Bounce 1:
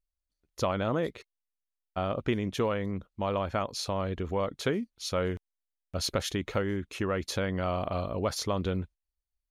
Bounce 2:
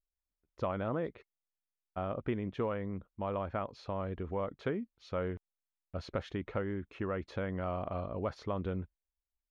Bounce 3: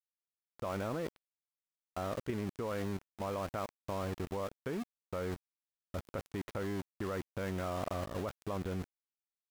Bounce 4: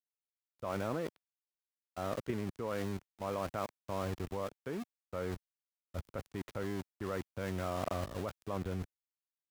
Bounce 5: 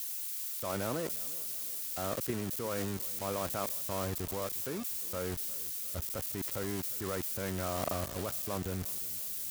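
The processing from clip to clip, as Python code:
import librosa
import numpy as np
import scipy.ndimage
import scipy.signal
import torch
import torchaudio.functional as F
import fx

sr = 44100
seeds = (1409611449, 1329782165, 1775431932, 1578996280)

y1 = scipy.signal.sosfilt(scipy.signal.butter(2, 2000.0, 'lowpass', fs=sr, output='sos'), x)
y1 = y1 * librosa.db_to_amplitude(-5.5)
y2 = np.where(np.abs(y1) >= 10.0 ** (-40.0 / 20.0), y1, 0.0)
y2 = fx.level_steps(y2, sr, step_db=10)
y2 = y2 * librosa.db_to_amplitude(3.5)
y3 = fx.band_widen(y2, sr, depth_pct=100)
y4 = y3 + 0.5 * 10.0 ** (-30.5 / 20.0) * np.diff(np.sign(y3), prepend=np.sign(y3[:1]))
y4 = fx.echo_feedback(y4, sr, ms=354, feedback_pct=51, wet_db=-20)
y4 = y4 * librosa.db_to_amplitude(1.0)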